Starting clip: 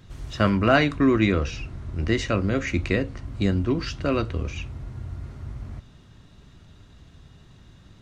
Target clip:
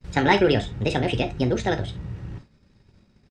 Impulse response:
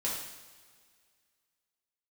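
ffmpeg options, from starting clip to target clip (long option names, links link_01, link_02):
-filter_complex "[0:a]agate=range=-33dB:threshold=-41dB:ratio=3:detection=peak,lowpass=4400,atempo=1.8,asplit=2[link_01][link_02];[1:a]atrim=start_sample=2205,atrim=end_sample=3969,asetrate=41895,aresample=44100[link_03];[link_02][link_03]afir=irnorm=-1:irlink=0,volume=-8dB[link_04];[link_01][link_04]amix=inputs=2:normalize=0,asetrate=59535,aresample=44100,volume=-1.5dB"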